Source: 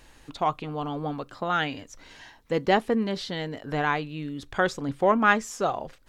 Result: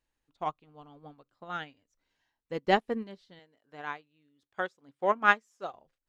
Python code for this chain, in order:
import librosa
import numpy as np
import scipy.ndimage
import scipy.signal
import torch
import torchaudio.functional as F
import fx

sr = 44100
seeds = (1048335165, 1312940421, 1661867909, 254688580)

y = fx.highpass(x, sr, hz=340.0, slope=6, at=(3.39, 5.74))
y = fx.upward_expand(y, sr, threshold_db=-37.0, expansion=2.5)